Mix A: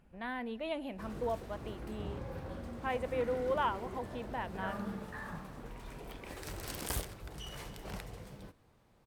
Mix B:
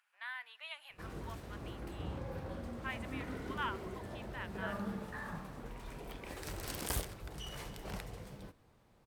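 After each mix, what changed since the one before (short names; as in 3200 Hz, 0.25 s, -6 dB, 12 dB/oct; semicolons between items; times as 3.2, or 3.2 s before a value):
speech: add HPF 1200 Hz 24 dB/oct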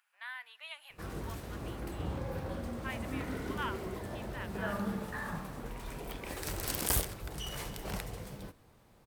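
background +4.5 dB; master: add high shelf 8600 Hz +7.5 dB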